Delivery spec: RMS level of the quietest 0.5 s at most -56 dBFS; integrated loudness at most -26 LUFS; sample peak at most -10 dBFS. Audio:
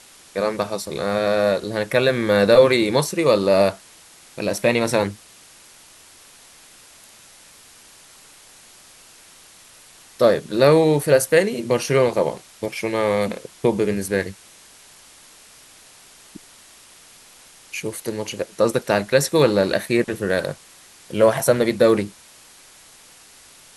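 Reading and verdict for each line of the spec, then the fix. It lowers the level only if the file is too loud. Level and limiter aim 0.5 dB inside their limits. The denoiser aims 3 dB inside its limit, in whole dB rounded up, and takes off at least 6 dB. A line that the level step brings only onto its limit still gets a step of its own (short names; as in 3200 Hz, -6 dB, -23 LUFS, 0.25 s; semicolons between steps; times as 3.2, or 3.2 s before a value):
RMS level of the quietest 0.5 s -48 dBFS: fail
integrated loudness -19.5 LUFS: fail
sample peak -2.0 dBFS: fail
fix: denoiser 6 dB, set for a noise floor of -48 dBFS; gain -7 dB; limiter -10.5 dBFS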